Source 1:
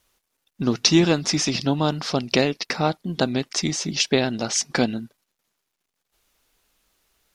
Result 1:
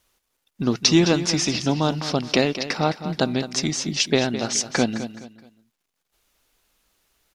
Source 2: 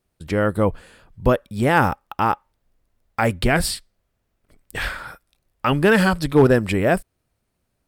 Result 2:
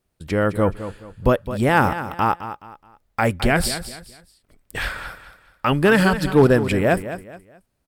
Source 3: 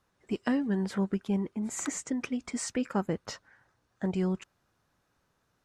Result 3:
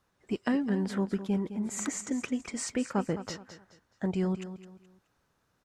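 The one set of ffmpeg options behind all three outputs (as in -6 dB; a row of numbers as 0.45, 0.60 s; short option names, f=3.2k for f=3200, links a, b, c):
-af "aecho=1:1:212|424|636:0.251|0.0804|0.0257"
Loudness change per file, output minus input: 0.0, 0.0, 0.0 LU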